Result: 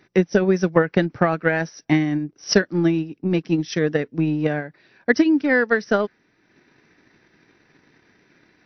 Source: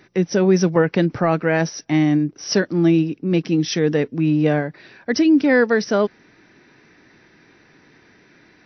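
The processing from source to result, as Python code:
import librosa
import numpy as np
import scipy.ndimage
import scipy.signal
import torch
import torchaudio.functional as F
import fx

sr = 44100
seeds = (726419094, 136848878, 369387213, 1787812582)

y = fx.dynamic_eq(x, sr, hz=1600.0, q=1.6, threshold_db=-36.0, ratio=4.0, max_db=5)
y = fx.transient(y, sr, attack_db=10, sustain_db=-5)
y = y * librosa.db_to_amplitude(-6.0)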